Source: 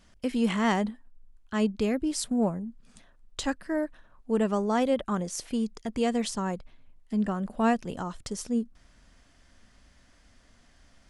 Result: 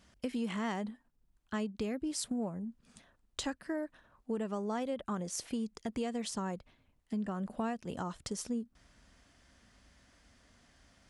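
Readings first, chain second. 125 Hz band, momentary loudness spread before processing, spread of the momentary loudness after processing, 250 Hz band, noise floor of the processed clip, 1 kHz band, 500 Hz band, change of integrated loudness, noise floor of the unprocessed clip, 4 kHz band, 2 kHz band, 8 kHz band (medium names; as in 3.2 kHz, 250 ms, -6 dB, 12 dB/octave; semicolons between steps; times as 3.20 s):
-8.0 dB, 10 LU, 8 LU, -9.0 dB, -73 dBFS, -9.5 dB, -9.5 dB, -9.0 dB, -61 dBFS, -6.5 dB, -9.5 dB, -4.5 dB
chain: high-pass 47 Hz 12 dB/octave; compression 6:1, threshold -30 dBFS, peak gain reduction 11 dB; trim -2.5 dB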